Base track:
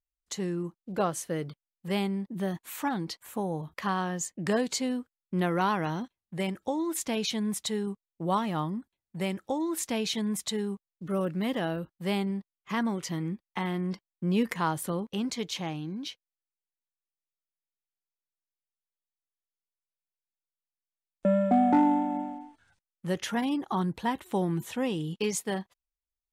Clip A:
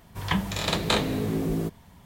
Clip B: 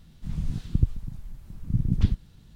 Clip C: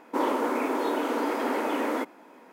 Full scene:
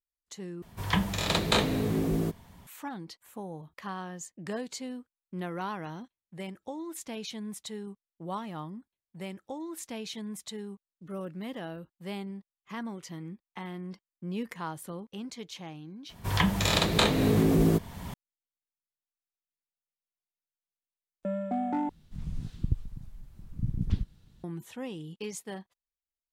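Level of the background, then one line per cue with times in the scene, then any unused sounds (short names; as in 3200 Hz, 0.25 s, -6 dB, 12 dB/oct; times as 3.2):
base track -8.5 dB
0.62 replace with A -1 dB
16.09 add A -0.5 dB + recorder AGC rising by 23 dB/s
21.89 replace with B -6.5 dB
not used: C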